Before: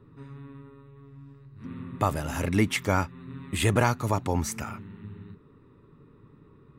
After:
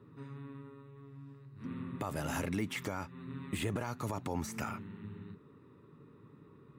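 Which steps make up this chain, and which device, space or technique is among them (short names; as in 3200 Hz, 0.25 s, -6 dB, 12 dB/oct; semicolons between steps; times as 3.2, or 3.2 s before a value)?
podcast mastering chain (HPF 110 Hz 12 dB/oct; de-esser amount 75%; compressor 2.5:1, threshold -28 dBFS, peak gain reduction 7.5 dB; limiter -23 dBFS, peak gain reduction 9.5 dB; gain -1.5 dB; MP3 96 kbps 48000 Hz)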